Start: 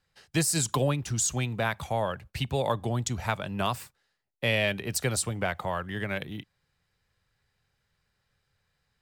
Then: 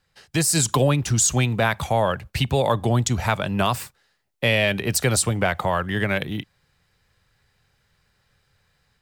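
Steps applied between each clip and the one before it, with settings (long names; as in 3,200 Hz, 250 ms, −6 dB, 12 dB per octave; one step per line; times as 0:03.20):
in parallel at +3 dB: brickwall limiter −20.5 dBFS, peak gain reduction 7.5 dB
on the sum: automatic gain control gain up to 4 dB
level −2 dB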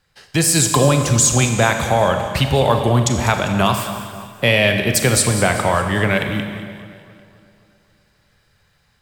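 echo with a time of its own for lows and highs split 1,700 Hz, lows 265 ms, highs 199 ms, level −14 dB
four-comb reverb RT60 1.6 s, combs from 30 ms, DRR 6 dB
level +4.5 dB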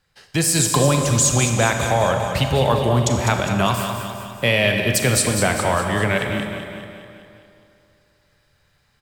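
repeating echo 205 ms, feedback 55%, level −9 dB
level −3 dB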